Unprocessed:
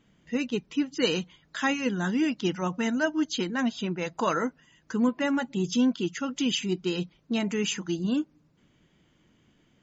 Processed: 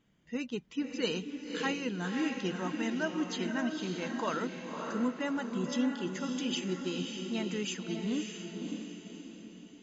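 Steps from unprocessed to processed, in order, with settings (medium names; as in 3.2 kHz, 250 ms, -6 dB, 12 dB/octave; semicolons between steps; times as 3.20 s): echo that smears into a reverb 581 ms, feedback 45%, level -4.5 dB; trim -7.5 dB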